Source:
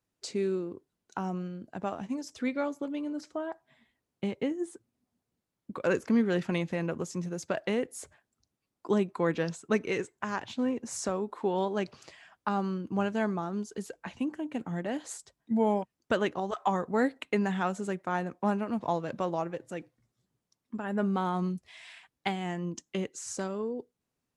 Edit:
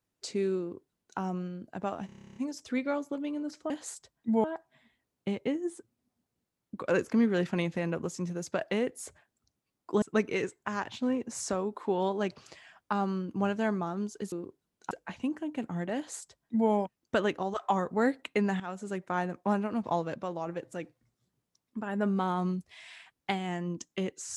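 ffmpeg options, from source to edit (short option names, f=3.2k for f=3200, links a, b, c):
-filter_complex "[0:a]asplit=19[a][b][c][d][e][f][g][h][i][j][k][l][m][n][o][p][q][r][s];[a]atrim=end=2.092[t];[b]atrim=start=2.058:end=2.092[u];[c]atrim=start=2.058:end=2.092[v];[d]atrim=start=2.058:end=2.092[w];[e]atrim=start=2.058:end=2.092[x];[f]atrim=start=2.058:end=2.092[y];[g]atrim=start=2.058:end=2.092[z];[h]atrim=start=2.058:end=2.092[aa];[i]atrim=start=2.058:end=2.092[ab];[j]atrim=start=2.058:end=2.092[ac];[k]atrim=start=2.058:end=3.402[ad];[l]atrim=start=14.928:end=15.672[ae];[m]atrim=start=3.398:end=8.982[af];[n]atrim=start=9.578:end=13.882[ag];[o]atrim=start=0.598:end=1.192[ah];[p]atrim=start=13.878:end=17.57,asetpts=PTS-STARTPTS,afade=t=out:st=3.688:d=0.004:c=hsin:silence=0.223872[ai];[q]atrim=start=17.57:end=19.122,asetpts=PTS-STARTPTS,afade=t=in:d=0.48:silence=0.223872[aj];[r]atrim=start=19.118:end=19.442,asetpts=PTS-STARTPTS,volume=-4.5dB[ak];[s]atrim=start=19.438[al];[t][u]acrossfade=d=0.004:c1=hsin:c2=hsin[am];[am][v]acrossfade=d=0.004:c1=hsin:c2=hsin[an];[an][w]acrossfade=d=0.004:c1=hsin:c2=hsin[ao];[ao][x]acrossfade=d=0.004:c1=hsin:c2=hsin[ap];[ap][y]acrossfade=d=0.004:c1=hsin:c2=hsin[aq];[aq][z]acrossfade=d=0.004:c1=hsin:c2=hsin[ar];[ar][aa]acrossfade=d=0.004:c1=hsin:c2=hsin[as];[as][ab]acrossfade=d=0.004:c1=hsin:c2=hsin[at];[at][ac]acrossfade=d=0.004:c1=hsin:c2=hsin[au];[au][ad]acrossfade=d=0.004:c1=hsin:c2=hsin[av];[av][ae]acrossfade=d=0.004:c1=hsin:c2=hsin[aw];[aw][af]acrossfade=d=0.004:c1=hsin:c2=hsin[ax];[ax][ag]acrossfade=d=0.004:c1=hsin:c2=hsin[ay];[ay][ah]acrossfade=d=0.004:c1=hsin:c2=hsin[az];[ai][aj]concat=n=2:v=0:a=1[ba];[az][ba]acrossfade=d=0.004:c1=hsin:c2=hsin[bb];[bb][ak]acrossfade=d=0.004:c1=hsin:c2=hsin[bc];[bc][al]acrossfade=d=0.004:c1=hsin:c2=hsin"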